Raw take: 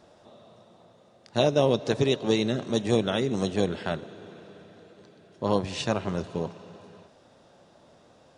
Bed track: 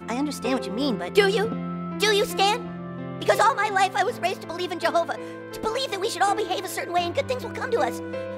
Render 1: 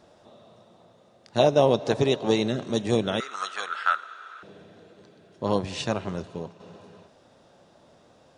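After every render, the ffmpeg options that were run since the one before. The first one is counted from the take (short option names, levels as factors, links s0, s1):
-filter_complex "[0:a]asettb=1/sr,asplit=3[s0][s1][s2];[s0]atrim=end=1.394[s3];[s1]atrim=start=1.39:end=2.48,asetpts=PTS-STARTPTS,afade=t=in:d=0.004:c=qsin,afade=t=out:st=1.086:d=0.004:c=qsin,equalizer=f=790:w=1.3:g=6[s4];[s2]atrim=start=2.476[s5];[s3][s4]acrossfade=d=0.004:c1=hsin:c2=qsin[s6];[s6][s5]acrossfade=d=0.004:c1=qsin:c2=hsin,asettb=1/sr,asplit=3[s7][s8][s9];[s7]atrim=end=3.204[s10];[s8]atrim=start=3.2:end=4.43,asetpts=PTS-STARTPTS,afade=t=in:d=0.004:c=qsin,afade=t=out:st=1.226:d=0.004:c=qsin,highpass=f=1300:t=q:w=14[s11];[s9]atrim=start=4.426[s12];[s10][s11]acrossfade=d=0.004:c1=hsin:c2=qsin[s13];[s13][s12]acrossfade=d=0.004:c1=qsin:c2=hsin,asplit=2[s14][s15];[s14]atrim=end=6.6,asetpts=PTS-STARTPTS,afade=t=out:st=5.83:d=0.77:silence=0.446684[s16];[s15]atrim=start=6.6,asetpts=PTS-STARTPTS,afade=t=in:d=0.004:c=hsin:silence=0.446684[s17];[s16][s17]concat=n=2:v=0:a=1"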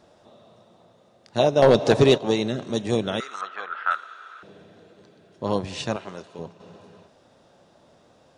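-filter_complex "[0:a]asettb=1/sr,asplit=3[s0][s1][s2];[s0]atrim=end=1.624[s3];[s1]atrim=start=1.62:end=2.18,asetpts=PTS-STARTPTS,afade=t=in:d=0.004:c=qsin,afade=t=out:st=0.556:d=0.004:c=qsin,aeval=exprs='0.447*sin(PI/2*1.58*val(0)/0.447)':c=same[s4];[s2]atrim=start=2.176[s5];[s3][s4]acrossfade=d=0.004:c1=hsin:c2=qsin[s6];[s6][s5]acrossfade=d=0.004:c1=qsin:c2=hsin,asettb=1/sr,asplit=3[s7][s8][s9];[s7]atrim=end=3.414[s10];[s8]atrim=start=3.41:end=3.91,asetpts=PTS-STARTPTS,afade=t=in:d=0.004:c=qsin,afade=t=out:st=0.496:d=0.004:c=qsin,lowpass=2100[s11];[s9]atrim=start=3.906[s12];[s10][s11]acrossfade=d=0.004:c1=hsin:c2=qsin[s13];[s13][s12]acrossfade=d=0.004:c1=qsin:c2=hsin,asettb=1/sr,asplit=3[s14][s15][s16];[s14]atrim=end=5.964[s17];[s15]atrim=start=5.96:end=6.39,asetpts=PTS-STARTPTS,afade=t=in:d=0.004:c=qsin,afade=t=out:st=0.426:d=0.004:c=qsin,highpass=f=530:p=1[s18];[s16]atrim=start=6.386[s19];[s17][s18]acrossfade=d=0.004:c1=hsin:c2=qsin[s20];[s20][s19]acrossfade=d=0.004:c1=qsin:c2=hsin"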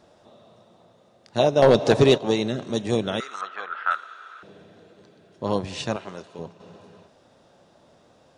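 -af anull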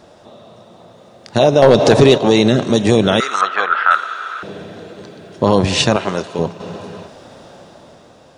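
-af "dynaudnorm=f=160:g=11:m=2.24,alimiter=level_in=3.55:limit=0.891:release=50:level=0:latency=1"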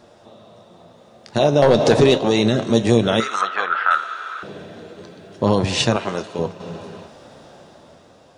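-af "flanger=delay=8.5:depth=5.4:regen=68:speed=0.34:shape=sinusoidal"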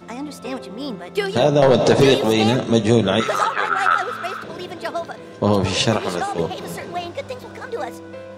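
-filter_complex "[1:a]volume=0.631[s0];[0:a][s0]amix=inputs=2:normalize=0"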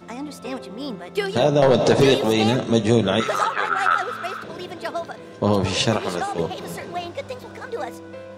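-af "volume=0.794"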